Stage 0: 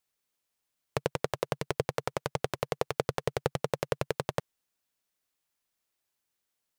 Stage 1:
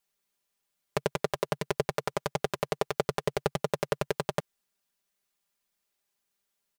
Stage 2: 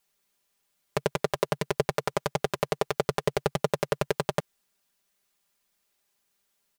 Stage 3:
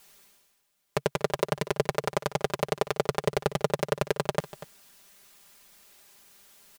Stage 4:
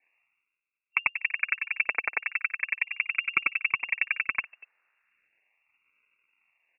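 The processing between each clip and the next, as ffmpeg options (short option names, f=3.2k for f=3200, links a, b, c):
-af "aecho=1:1:5:0.7"
-af "alimiter=limit=-14.5dB:level=0:latency=1:release=38,volume=6dB"
-af "areverse,acompressor=mode=upward:threshold=-40dB:ratio=2.5,areverse,aecho=1:1:241:0.158"
-af "acrusher=samples=29:mix=1:aa=0.000001:lfo=1:lforange=29:lforate=0.37,afwtdn=0.02,lowpass=f=2.4k:t=q:w=0.5098,lowpass=f=2.4k:t=q:w=0.6013,lowpass=f=2.4k:t=q:w=0.9,lowpass=f=2.4k:t=q:w=2.563,afreqshift=-2800"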